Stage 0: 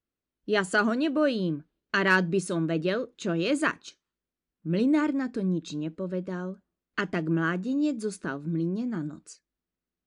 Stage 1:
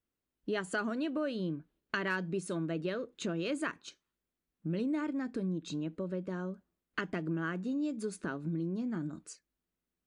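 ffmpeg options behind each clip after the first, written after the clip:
-af "equalizer=f=5.3k:w=1.5:g=-3,acompressor=threshold=-34dB:ratio=3"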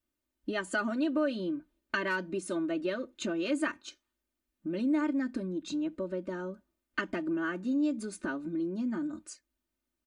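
-af "aecho=1:1:3.3:0.88"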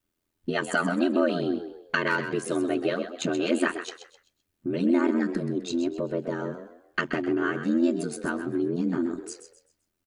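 -filter_complex "[0:a]aeval=exprs='val(0)*sin(2*PI*42*n/s)':c=same,asplit=5[a][b][c][d][e];[b]adelay=129,afreqshift=52,volume=-10dB[f];[c]adelay=258,afreqshift=104,volume=-19.4dB[g];[d]adelay=387,afreqshift=156,volume=-28.7dB[h];[e]adelay=516,afreqshift=208,volume=-38.1dB[i];[a][f][g][h][i]amix=inputs=5:normalize=0,volume=8.5dB"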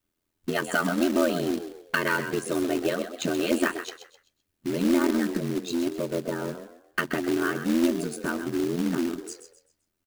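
-af "acrusher=bits=3:mode=log:mix=0:aa=0.000001"

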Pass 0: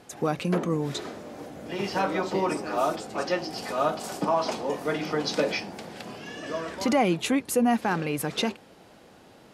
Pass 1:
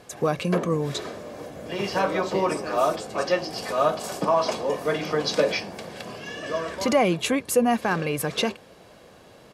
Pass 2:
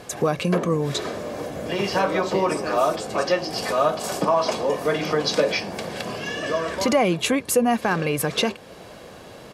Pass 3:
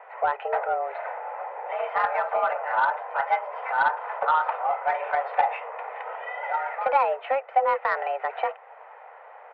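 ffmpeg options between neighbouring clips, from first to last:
-af "aecho=1:1:1.8:0.34,volume=2.5dB"
-af "acompressor=threshold=-36dB:ratio=1.5,volume=8dB"
-af "highpass=f=220:t=q:w=0.5412,highpass=f=220:t=q:w=1.307,lowpass=f=2k:t=q:w=0.5176,lowpass=f=2k:t=q:w=0.7071,lowpass=f=2k:t=q:w=1.932,afreqshift=270,aeval=exprs='0.422*(cos(1*acos(clip(val(0)/0.422,-1,1)))-cos(1*PI/2))+0.0422*(cos(3*acos(clip(val(0)/0.422,-1,1)))-cos(3*PI/2))':c=same"

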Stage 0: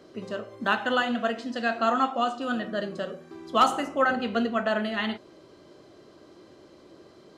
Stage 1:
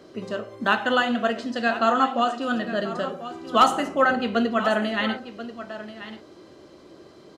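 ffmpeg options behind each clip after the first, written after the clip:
-af "aecho=1:1:1036:0.211,volume=3.5dB"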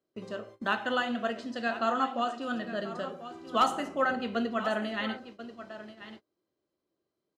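-af "agate=range=-28dB:threshold=-39dB:ratio=16:detection=peak,volume=-8dB"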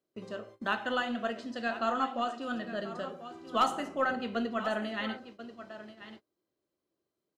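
-af "aeval=exprs='0.188*(cos(1*acos(clip(val(0)/0.188,-1,1)))-cos(1*PI/2))+0.00299*(cos(4*acos(clip(val(0)/0.188,-1,1)))-cos(4*PI/2))':c=same,volume=-2dB"

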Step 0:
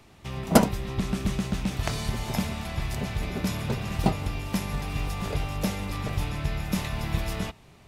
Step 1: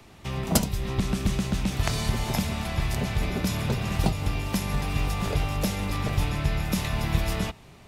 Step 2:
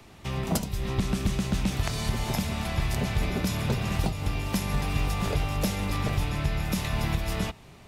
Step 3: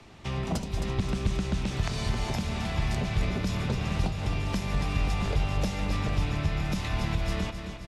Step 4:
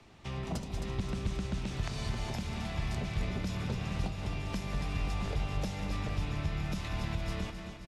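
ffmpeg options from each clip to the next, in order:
-filter_complex "[0:a]acrossover=split=140|3000[a][b][c];[b]acompressor=threshold=-29dB:ratio=6[d];[a][d][c]amix=inputs=3:normalize=0,volume=3.5dB"
-af "alimiter=limit=-14.5dB:level=0:latency=1:release=291"
-filter_complex "[0:a]lowpass=7.1k,aecho=1:1:266|532|798|1064|1330|1596|1862:0.299|0.17|0.097|0.0553|0.0315|0.018|0.0102,acrossover=split=120[a][b];[b]acompressor=threshold=-31dB:ratio=2[c];[a][c]amix=inputs=2:normalize=0"
-af "aecho=1:1:190:0.251,volume=-6.5dB"

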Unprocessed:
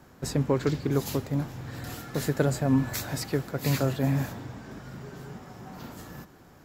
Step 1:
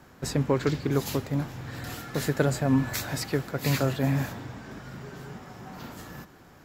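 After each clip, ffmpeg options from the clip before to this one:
-af "equalizer=f=2.2k:w=0.53:g=3.5"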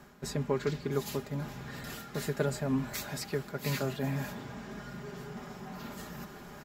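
-af "aecho=1:1:4.9:0.65,areverse,acompressor=mode=upward:threshold=-28dB:ratio=2.5,areverse,volume=-7.5dB"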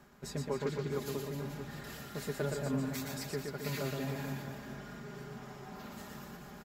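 -af "aecho=1:1:120|264|436.8|644.2|893:0.631|0.398|0.251|0.158|0.1,volume=-5.5dB"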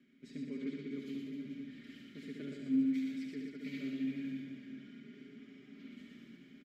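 -filter_complex "[0:a]asplit=3[a][b][c];[a]bandpass=f=270:t=q:w=8,volume=0dB[d];[b]bandpass=f=2.29k:t=q:w=8,volume=-6dB[e];[c]bandpass=f=3.01k:t=q:w=8,volume=-9dB[f];[d][e][f]amix=inputs=3:normalize=0,aecho=1:1:72:0.562,volume=4.5dB"

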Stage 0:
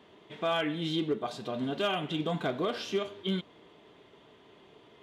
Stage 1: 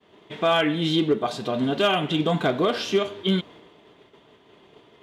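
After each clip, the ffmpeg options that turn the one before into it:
-af "agate=range=-33dB:threshold=-51dB:ratio=3:detection=peak,volume=9dB"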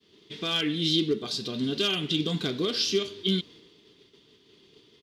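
-af "firequalizer=gain_entry='entry(420,0);entry(640,-16);entry(1200,-8);entry(4800,15);entry(7200,5)':delay=0.05:min_phase=1,volume=-4.5dB"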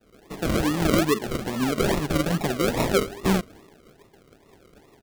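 -af "acrusher=samples=40:mix=1:aa=0.000001:lfo=1:lforange=24:lforate=2.4,volume=4.5dB"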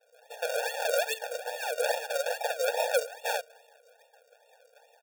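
-af "afftfilt=real='re*eq(mod(floor(b*sr/1024/470),2),1)':imag='im*eq(mod(floor(b*sr/1024/470),2),1)':win_size=1024:overlap=0.75"

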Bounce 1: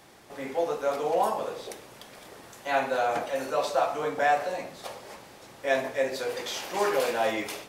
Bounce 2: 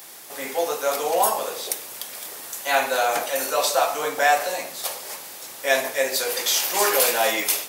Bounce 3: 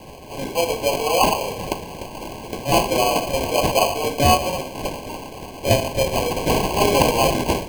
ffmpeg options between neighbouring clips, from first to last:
-af "aemphasis=mode=production:type=riaa,volume=5.5dB"
-af "acrusher=samples=24:mix=1:aa=0.000001,asuperstop=centerf=1300:order=20:qfactor=3.1,volume=3.5dB"

